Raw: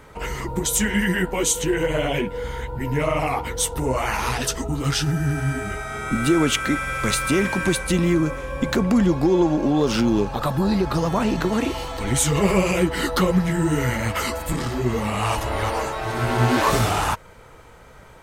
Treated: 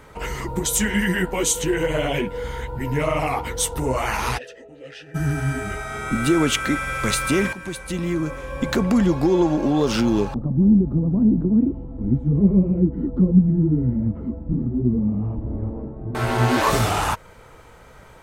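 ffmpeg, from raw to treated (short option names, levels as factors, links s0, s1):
-filter_complex "[0:a]asplit=3[s0][s1][s2];[s0]afade=t=out:st=4.37:d=0.02[s3];[s1]asplit=3[s4][s5][s6];[s4]bandpass=f=530:t=q:w=8,volume=1[s7];[s5]bandpass=f=1840:t=q:w=8,volume=0.501[s8];[s6]bandpass=f=2480:t=q:w=8,volume=0.355[s9];[s7][s8][s9]amix=inputs=3:normalize=0,afade=t=in:st=4.37:d=0.02,afade=t=out:st=5.14:d=0.02[s10];[s2]afade=t=in:st=5.14:d=0.02[s11];[s3][s10][s11]amix=inputs=3:normalize=0,asettb=1/sr,asplit=3[s12][s13][s14];[s12]atrim=end=10.344[s15];[s13]atrim=start=10.34:end=16.15,asetpts=PTS-STARTPTS,afade=t=in:d=0.004:c=qsin,afade=t=out:st=5.806:d=0.004:c=qsin,lowpass=f=240:t=q:w=2.4[s16];[s14]atrim=start=16.146[s17];[s15][s16]acrossfade=d=0.004:c1=hsin:c2=qsin[s18];[s18][s17]acrossfade=d=0.004:c1=qsin:c2=hsin,asplit=2[s19][s20];[s19]atrim=end=7.53,asetpts=PTS-STARTPTS,afade=t=out:st=7.526:d=0.004:c=hsin:silence=0.199526[s21];[s20]atrim=start=7.53,asetpts=PTS-STARTPTS,afade=t=in:d=1.24:silence=0.199526[s22];[s21][s22]concat=n=2:v=0:a=1"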